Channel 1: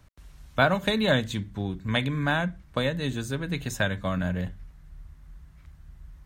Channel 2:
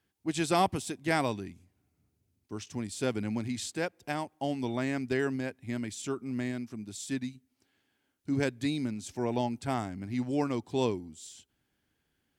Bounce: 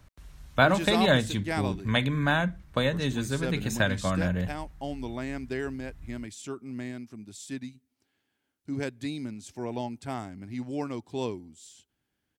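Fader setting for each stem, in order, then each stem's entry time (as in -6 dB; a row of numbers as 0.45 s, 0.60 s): +0.5 dB, -3.0 dB; 0.00 s, 0.40 s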